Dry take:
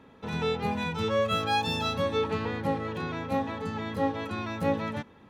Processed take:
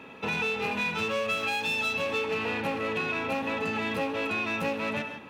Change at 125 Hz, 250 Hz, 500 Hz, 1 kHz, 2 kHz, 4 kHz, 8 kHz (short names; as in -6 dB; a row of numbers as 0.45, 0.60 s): -7.5, -2.5, -1.5, -2.0, +7.5, 0.0, +2.5 dB